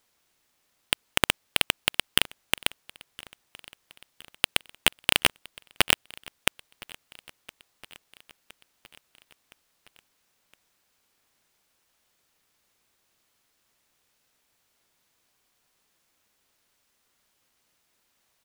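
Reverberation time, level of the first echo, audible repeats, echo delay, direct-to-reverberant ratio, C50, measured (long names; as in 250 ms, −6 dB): no reverb audible, −23.0 dB, 3, 1,015 ms, no reverb audible, no reverb audible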